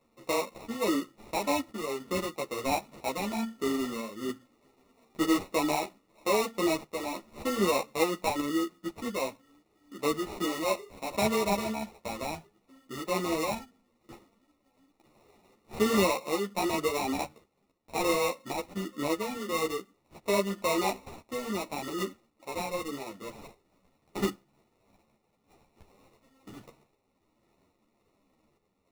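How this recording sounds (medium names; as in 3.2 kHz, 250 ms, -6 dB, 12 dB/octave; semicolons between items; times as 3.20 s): random-step tremolo; aliases and images of a low sample rate 1.6 kHz, jitter 0%; a shimmering, thickened sound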